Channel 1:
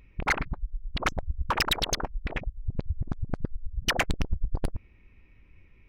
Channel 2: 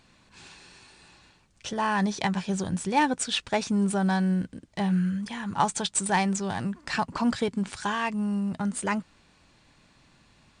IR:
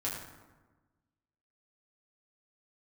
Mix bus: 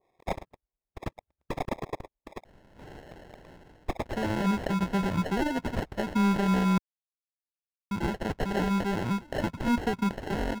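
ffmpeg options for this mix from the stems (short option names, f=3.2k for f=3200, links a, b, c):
-filter_complex "[0:a]highpass=960,acrusher=samples=30:mix=1:aa=0.000001,adynamicequalizer=threshold=0.00501:dfrequency=1600:dqfactor=0.7:tfrequency=1600:tqfactor=0.7:attack=5:release=100:ratio=0.375:range=3.5:mode=cutabove:tftype=highshelf,volume=-4.5dB[a];[1:a]acrossover=split=250[b][c];[c]acompressor=threshold=-29dB:ratio=10[d];[b][d]amix=inputs=2:normalize=0,acrusher=samples=37:mix=1:aa=0.000001,adelay=2450,volume=3dB,asplit=3[e][f][g];[e]atrim=end=6.78,asetpts=PTS-STARTPTS,afade=t=out:st=6.776:d=0.004:c=hsin[h];[f]atrim=start=6.78:end=7.91,asetpts=PTS-STARTPTS,volume=0[i];[g]atrim=start=7.91,asetpts=PTS-STARTPTS,afade=t=in:d=0.004:c=hsin[j];[h][i][j]concat=n=3:v=0:a=1[k];[a][k]amix=inputs=2:normalize=0,asplit=2[l][m];[m]highpass=f=720:p=1,volume=7dB,asoftclip=type=tanh:threshold=-15.5dB[n];[l][n]amix=inputs=2:normalize=0,lowpass=f=1.9k:p=1,volume=-6dB,lowshelf=f=110:g=9.5,acrusher=bits=8:mode=log:mix=0:aa=0.000001"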